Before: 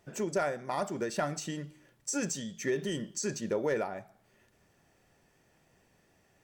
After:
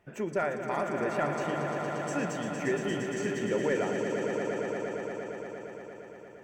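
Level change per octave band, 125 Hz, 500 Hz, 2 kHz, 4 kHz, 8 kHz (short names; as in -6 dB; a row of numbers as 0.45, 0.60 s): +3.5, +4.5, +5.5, -1.0, -7.5 dB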